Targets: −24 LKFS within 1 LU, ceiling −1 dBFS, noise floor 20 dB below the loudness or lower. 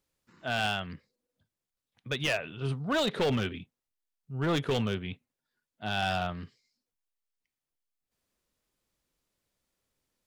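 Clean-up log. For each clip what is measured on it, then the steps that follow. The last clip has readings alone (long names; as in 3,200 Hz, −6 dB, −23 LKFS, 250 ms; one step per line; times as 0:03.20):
share of clipped samples 1.1%; peaks flattened at −23.0 dBFS; number of dropouts 1; longest dropout 2.7 ms; integrated loudness −31.0 LKFS; sample peak −23.0 dBFS; target loudness −24.0 LKFS
→ clipped peaks rebuilt −23 dBFS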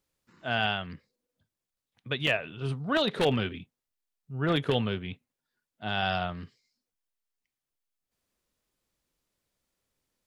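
share of clipped samples 0.0%; number of dropouts 1; longest dropout 2.7 ms
→ repair the gap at 0:02.27, 2.7 ms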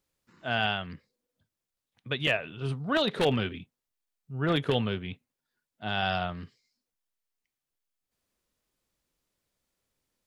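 number of dropouts 0; integrated loudness −29.5 LKFS; sample peak −14.0 dBFS; target loudness −24.0 LKFS
→ level +5.5 dB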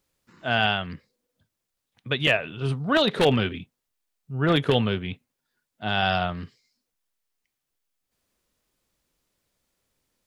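integrated loudness −24.0 LKFS; sample peak −8.5 dBFS; background noise floor −82 dBFS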